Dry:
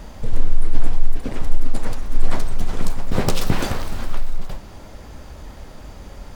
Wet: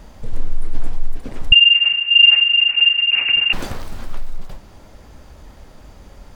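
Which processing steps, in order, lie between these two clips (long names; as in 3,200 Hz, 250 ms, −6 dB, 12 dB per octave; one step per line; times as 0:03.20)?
0:01.52–0:03.53: voice inversion scrambler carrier 2,800 Hz
level −4 dB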